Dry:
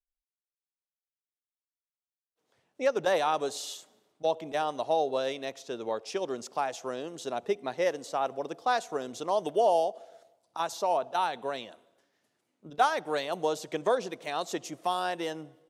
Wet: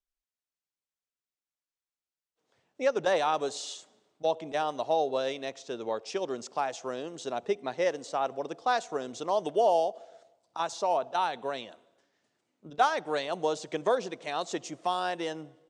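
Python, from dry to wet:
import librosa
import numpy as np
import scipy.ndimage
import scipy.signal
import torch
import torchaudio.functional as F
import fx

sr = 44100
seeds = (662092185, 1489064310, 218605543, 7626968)

y = scipy.signal.sosfilt(scipy.signal.butter(6, 8600.0, 'lowpass', fs=sr, output='sos'), x)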